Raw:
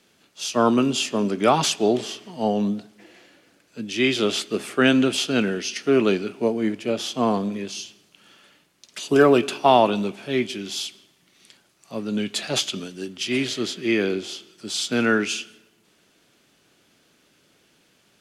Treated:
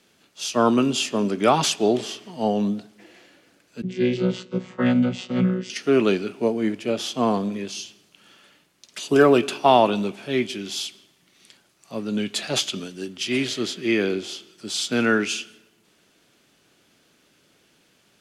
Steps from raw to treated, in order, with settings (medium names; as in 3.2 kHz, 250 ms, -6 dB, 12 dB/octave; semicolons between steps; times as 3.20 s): 3.82–5.70 s: vocoder on a held chord bare fifth, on B2